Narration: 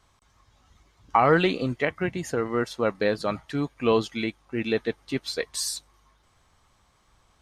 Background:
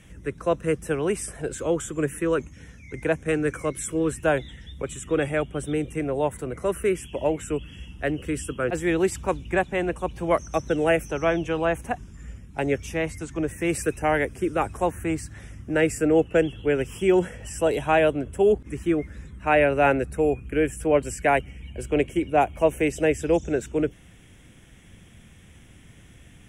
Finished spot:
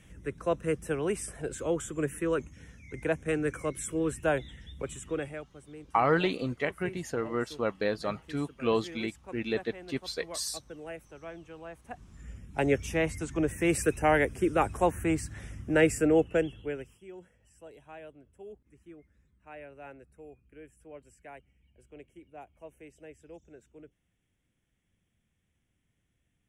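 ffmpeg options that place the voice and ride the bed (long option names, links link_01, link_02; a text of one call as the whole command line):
ffmpeg -i stem1.wav -i stem2.wav -filter_complex "[0:a]adelay=4800,volume=-5.5dB[link_01];[1:a]volume=14dB,afade=type=out:start_time=4.9:duration=0.57:silence=0.16788,afade=type=in:start_time=11.82:duration=0.79:silence=0.105925,afade=type=out:start_time=15.85:duration=1.13:silence=0.0501187[link_02];[link_01][link_02]amix=inputs=2:normalize=0" out.wav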